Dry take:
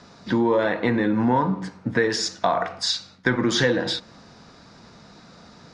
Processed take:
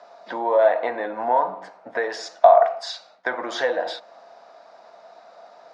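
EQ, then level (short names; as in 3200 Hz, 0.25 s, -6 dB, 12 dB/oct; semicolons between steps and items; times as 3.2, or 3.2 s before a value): resonant high-pass 660 Hz, resonance Q 6.4; high shelf 3900 Hz -11 dB; -3.0 dB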